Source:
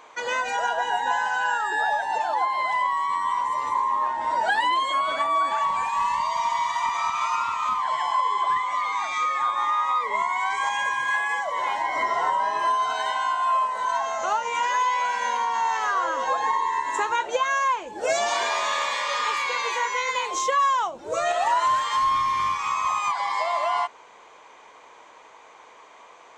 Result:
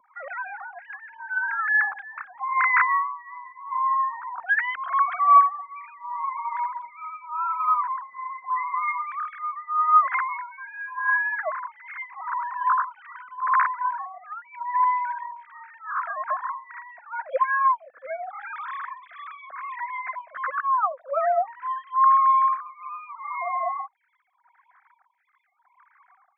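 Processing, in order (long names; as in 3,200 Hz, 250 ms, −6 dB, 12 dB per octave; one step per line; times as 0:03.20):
three sine waves on the formant tracks
phaser with its sweep stopped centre 580 Hz, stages 8
phaser with staggered stages 0.82 Hz
level +5.5 dB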